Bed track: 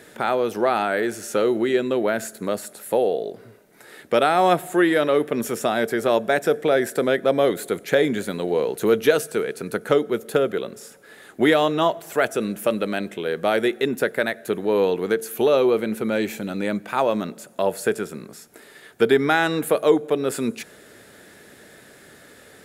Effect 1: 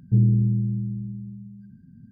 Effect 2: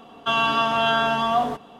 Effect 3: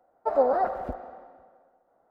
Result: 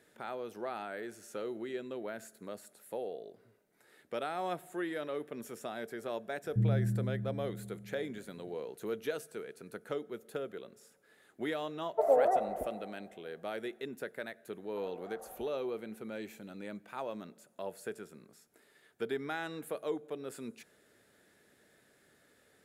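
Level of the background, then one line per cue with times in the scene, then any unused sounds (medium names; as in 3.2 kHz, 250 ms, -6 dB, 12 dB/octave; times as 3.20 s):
bed track -19 dB
6.44 s: add 1 -11 dB
11.72 s: add 3 -14 dB + small resonant body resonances 450/630/2000 Hz, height 15 dB, ringing for 25 ms
14.51 s: add 3 -17 dB + compression, threshold -29 dBFS
not used: 2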